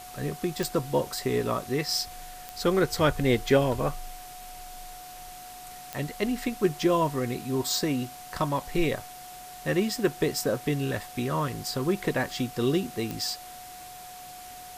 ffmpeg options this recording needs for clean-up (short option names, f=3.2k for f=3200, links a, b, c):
-af "adeclick=t=4,bandreject=f=730:w=30,afwtdn=0.005"